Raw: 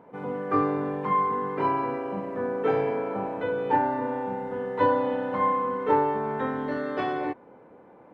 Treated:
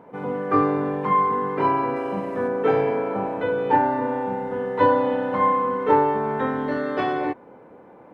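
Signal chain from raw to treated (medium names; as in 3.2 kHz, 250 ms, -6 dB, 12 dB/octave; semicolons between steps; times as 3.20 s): 1.96–2.48 s: treble shelf 3.6 kHz +9.5 dB; trim +4.5 dB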